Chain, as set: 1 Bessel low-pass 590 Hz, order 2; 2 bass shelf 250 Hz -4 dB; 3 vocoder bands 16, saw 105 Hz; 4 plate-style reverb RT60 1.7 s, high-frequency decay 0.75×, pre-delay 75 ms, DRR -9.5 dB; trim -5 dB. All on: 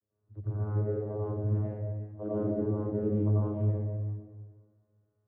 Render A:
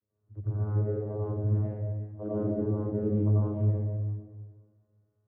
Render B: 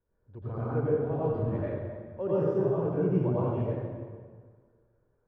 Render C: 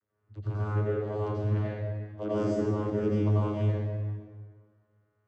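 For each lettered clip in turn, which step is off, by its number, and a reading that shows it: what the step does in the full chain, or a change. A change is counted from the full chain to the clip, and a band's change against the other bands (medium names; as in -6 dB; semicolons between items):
2, 125 Hz band +2.5 dB; 3, 125 Hz band -7.5 dB; 1, 1 kHz band +6.0 dB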